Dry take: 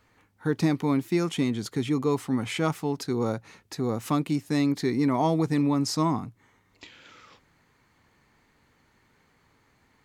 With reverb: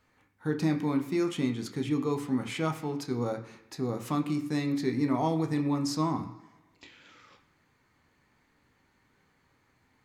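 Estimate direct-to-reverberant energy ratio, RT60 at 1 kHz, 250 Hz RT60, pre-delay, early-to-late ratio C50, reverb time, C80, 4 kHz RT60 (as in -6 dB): 4.0 dB, 1.1 s, 0.95 s, 12 ms, 11.0 dB, 1.2 s, 13.5 dB, 1.1 s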